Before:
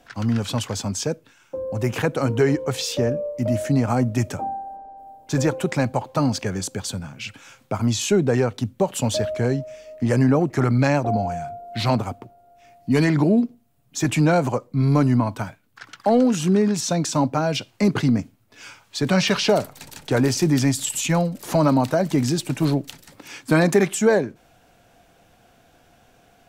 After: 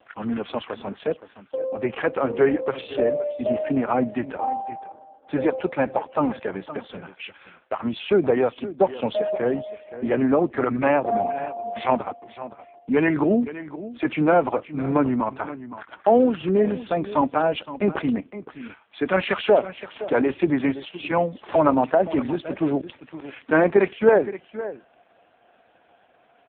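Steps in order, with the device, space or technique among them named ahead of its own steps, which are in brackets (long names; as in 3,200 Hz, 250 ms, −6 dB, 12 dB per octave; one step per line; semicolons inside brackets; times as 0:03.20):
0:07.06–0:07.83: high-pass filter 900 Hz → 290 Hz 12 dB per octave
satellite phone (band-pass filter 330–3,200 Hz; single-tap delay 519 ms −14.5 dB; level +3.5 dB; AMR narrowband 4.75 kbit/s 8,000 Hz)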